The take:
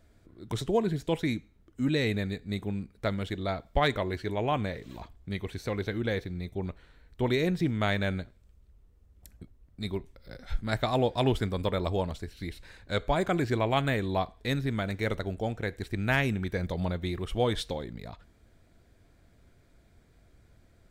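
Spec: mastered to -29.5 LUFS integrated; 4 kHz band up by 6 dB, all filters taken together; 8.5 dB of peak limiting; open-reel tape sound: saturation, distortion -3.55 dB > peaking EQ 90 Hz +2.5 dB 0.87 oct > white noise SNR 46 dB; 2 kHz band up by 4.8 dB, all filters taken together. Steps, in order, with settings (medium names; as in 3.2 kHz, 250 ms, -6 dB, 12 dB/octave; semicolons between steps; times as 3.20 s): peaking EQ 2 kHz +4.5 dB; peaking EQ 4 kHz +5.5 dB; peak limiter -17 dBFS; saturation -39 dBFS; peaking EQ 90 Hz +2.5 dB 0.87 oct; white noise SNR 46 dB; trim +12.5 dB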